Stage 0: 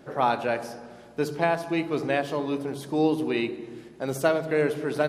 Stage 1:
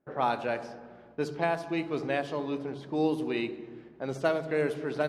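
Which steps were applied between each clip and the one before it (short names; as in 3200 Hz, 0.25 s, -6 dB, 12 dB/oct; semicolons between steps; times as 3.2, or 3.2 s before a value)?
gate with hold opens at -39 dBFS; low-pass opened by the level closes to 1900 Hz, open at -18.5 dBFS; gain -4.5 dB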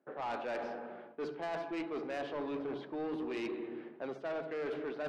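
three-band isolator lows -23 dB, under 210 Hz, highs -24 dB, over 3800 Hz; reverse; compressor 6:1, threshold -36 dBFS, peak gain reduction 14 dB; reverse; soft clip -37.5 dBFS, distortion -12 dB; gain +4.5 dB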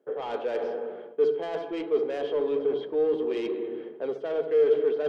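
small resonant body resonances 450/3200 Hz, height 18 dB, ringing for 45 ms; gain +1 dB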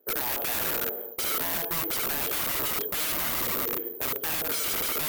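wrapped overs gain 28.5 dB; careless resampling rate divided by 3×, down none, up zero stuff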